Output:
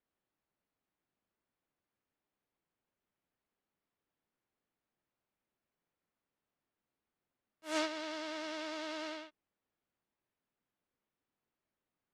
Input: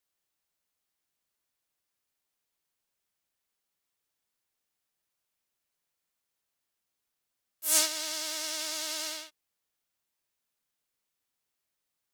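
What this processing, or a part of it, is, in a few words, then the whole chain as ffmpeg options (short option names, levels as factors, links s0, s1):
phone in a pocket: -af "lowpass=3300,equalizer=f=240:t=o:w=1.7:g=5.5,highshelf=f=2400:g=-11,volume=1.19"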